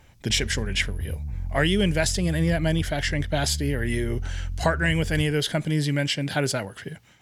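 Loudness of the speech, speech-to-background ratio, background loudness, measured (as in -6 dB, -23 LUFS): -25.0 LUFS, 8.5 dB, -33.5 LUFS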